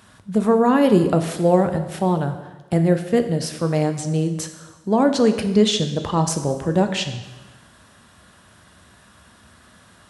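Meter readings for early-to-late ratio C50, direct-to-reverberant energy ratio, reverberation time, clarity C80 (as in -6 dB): 9.5 dB, 7.0 dB, 1.2 s, 11.5 dB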